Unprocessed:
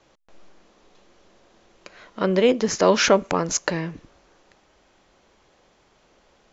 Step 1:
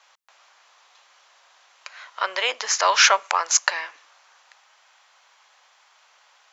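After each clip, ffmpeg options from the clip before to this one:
-af "highpass=f=870:w=0.5412,highpass=f=870:w=1.3066,volume=6dB"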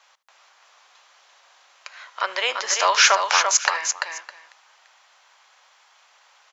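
-af "aecho=1:1:75|341|610:0.106|0.531|0.106"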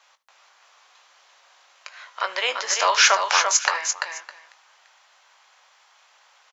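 -filter_complex "[0:a]asplit=2[a][b];[b]adelay=20,volume=-11dB[c];[a][c]amix=inputs=2:normalize=0,volume=-1dB"

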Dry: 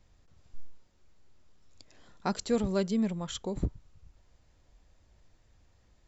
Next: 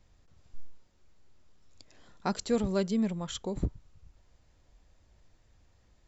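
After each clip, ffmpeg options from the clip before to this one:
-af anull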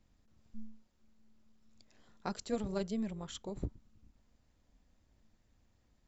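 -af "tremolo=f=220:d=0.571,volume=-5dB"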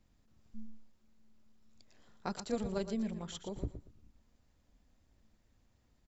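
-af "aecho=1:1:117|234|351:0.299|0.0687|0.0158"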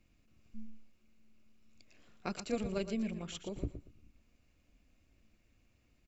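-af "superequalizer=6b=1.41:9b=0.562:12b=2.82"

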